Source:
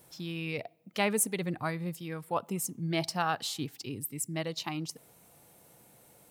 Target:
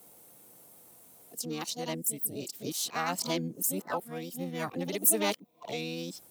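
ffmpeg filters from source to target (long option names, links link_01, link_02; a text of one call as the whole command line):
ffmpeg -i in.wav -filter_complex "[0:a]areverse,asplit=2[link_01][link_02];[link_02]asetrate=66075,aresample=44100,atempo=0.66742,volume=-3dB[link_03];[link_01][link_03]amix=inputs=2:normalize=0,highshelf=frequency=4400:gain=12,acrossover=split=240|700|4700[link_04][link_05][link_06][link_07];[link_05]acontrast=68[link_08];[link_04][link_08][link_06][link_07]amix=inputs=4:normalize=0,volume=-6.5dB" out.wav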